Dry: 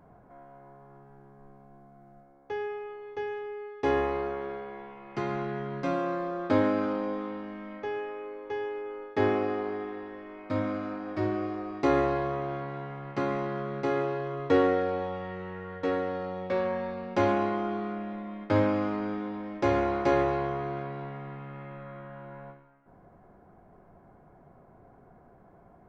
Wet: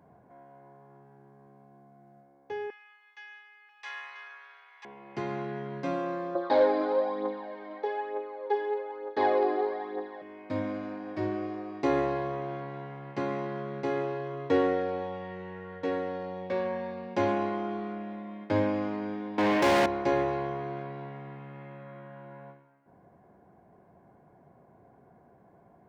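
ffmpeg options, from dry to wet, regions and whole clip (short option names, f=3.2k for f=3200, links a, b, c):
-filter_complex "[0:a]asettb=1/sr,asplit=3[a][b][c];[a]atrim=end=2.704[d];[b]atrim=start=2.7:end=4.85,asetpts=PTS-STARTPTS,afade=t=in:d=0.004:c=qsin,afade=t=out:st=2.146:d=0.004:c=qsin,highpass=f=1.3k:w=0.5412,highpass=f=1.3k:w=1.3066,aecho=1:1:989:0.596,atrim=end_sample=94815[e];[c]atrim=start=4.846[f];[d][e]acrossfade=d=0.004:c1=hsin:c2=qsin[g];[g][f]acrossfade=d=0.004:c1=qsin:c2=hsin,asettb=1/sr,asplit=3[h][i][j];[h]atrim=end=6.354[k];[i]atrim=start=6.35:end=10.22,asetpts=PTS-STARTPTS,afade=t=in:d=0.004:c=qsin,afade=t=out:st=3.866:d=0.004:c=qsin,aphaser=in_gain=1:out_gain=1:delay=3.1:decay=0.56:speed=1.1:type=triangular,volume=18.5dB,asoftclip=hard,volume=-18.5dB,highpass=310,equalizer=f=370:t=q:w=4:g=3,equalizer=f=540:t=q:w=4:g=7,equalizer=f=810:t=q:w=4:g=7,equalizer=f=1.2k:t=q:w=4:g=3,equalizer=f=2.7k:t=q:w=4:g=-9,equalizer=f=4k:t=q:w=4:g=10,lowpass=f=5.1k:w=0.5412,lowpass=f=5.1k:w=1.3066[l];[j]atrim=start=10.216[m];[k][l]acrossfade=d=0.004:c1=hsin:c2=qsin[n];[n][m]acrossfade=d=0.004:c1=qsin:c2=hsin,asettb=1/sr,asplit=3[o][p][q];[o]atrim=end=19.384[r];[p]atrim=start=19.38:end=19.86,asetpts=PTS-STARTPTS,afade=t=in:d=0.004:c=qsin,afade=t=out:st=0.476:d=0.004:c=qsin,aemphasis=mode=production:type=50fm,asplit=2[s][t];[t]highpass=f=720:p=1,volume=37dB,asoftclip=type=tanh:threshold=-14dB[u];[s][u]amix=inputs=2:normalize=0,lowpass=f=2.4k:p=1,volume=-6dB[v];[q]atrim=start=19.856[w];[r][v]acrossfade=d=0.004:c1=hsin:c2=qsin[x];[x][w]acrossfade=d=0.004:c1=qsin:c2=hsin,highpass=91,bandreject=f=1.3k:w=6.3,volume=-2dB"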